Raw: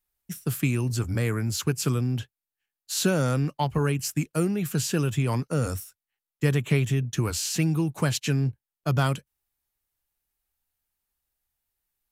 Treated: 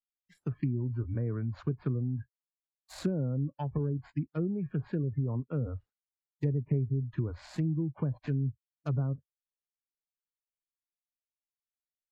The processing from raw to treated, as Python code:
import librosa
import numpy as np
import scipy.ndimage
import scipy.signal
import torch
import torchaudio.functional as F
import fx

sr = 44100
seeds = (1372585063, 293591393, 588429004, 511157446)

y = scipy.signal.medfilt(x, 15)
y = fx.env_lowpass_down(y, sr, base_hz=540.0, full_db=-20.5)
y = fx.dynamic_eq(y, sr, hz=770.0, q=1.2, threshold_db=-46.0, ratio=4.0, max_db=-6)
y = fx.noise_reduce_blind(y, sr, reduce_db=24)
y = F.gain(torch.from_numpy(y), -5.5).numpy()